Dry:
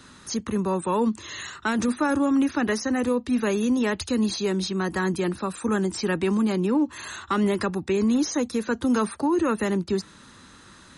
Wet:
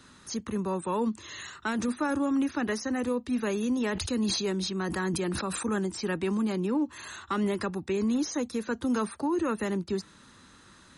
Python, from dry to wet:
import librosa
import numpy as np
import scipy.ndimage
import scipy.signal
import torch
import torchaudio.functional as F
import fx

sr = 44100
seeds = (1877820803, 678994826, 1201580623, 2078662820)

y = fx.sustainer(x, sr, db_per_s=33.0, at=(3.77, 5.79))
y = y * librosa.db_to_amplitude(-5.5)